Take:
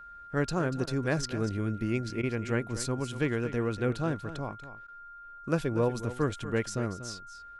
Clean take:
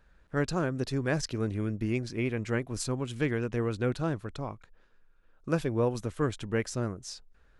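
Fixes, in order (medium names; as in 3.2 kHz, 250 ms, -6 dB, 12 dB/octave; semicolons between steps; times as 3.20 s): band-stop 1.4 kHz, Q 30; interpolate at 0.86/2.22/4.87 s, 11 ms; inverse comb 239 ms -13 dB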